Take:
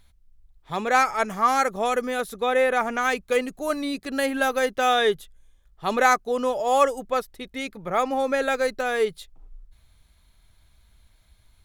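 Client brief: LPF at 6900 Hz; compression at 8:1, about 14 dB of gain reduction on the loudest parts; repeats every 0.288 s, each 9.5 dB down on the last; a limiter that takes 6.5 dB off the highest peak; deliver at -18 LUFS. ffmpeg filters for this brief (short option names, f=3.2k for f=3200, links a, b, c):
-af "lowpass=6.9k,acompressor=threshold=-29dB:ratio=8,alimiter=level_in=1dB:limit=-24dB:level=0:latency=1,volume=-1dB,aecho=1:1:288|576|864|1152:0.335|0.111|0.0365|0.012,volume=16.5dB"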